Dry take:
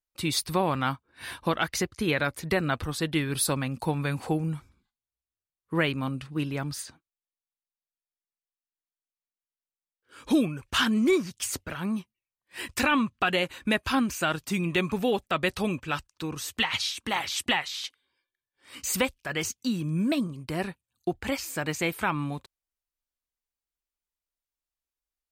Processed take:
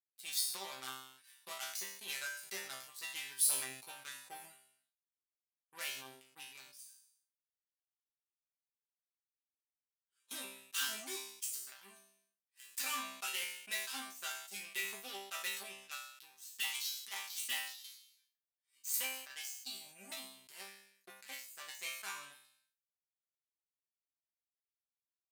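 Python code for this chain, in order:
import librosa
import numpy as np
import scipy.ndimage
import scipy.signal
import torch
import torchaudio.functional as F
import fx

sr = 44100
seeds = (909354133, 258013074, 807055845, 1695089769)

y = fx.cheby_harmonics(x, sr, harmonics=(5, 7), levels_db=(-28, -16), full_scale_db=-13.5)
y = np.diff(y, prepend=0.0)
y = fx.resonator_bank(y, sr, root=48, chord='fifth', decay_s=0.43)
y = fx.sustainer(y, sr, db_per_s=73.0)
y = y * 10.0 ** (11.5 / 20.0)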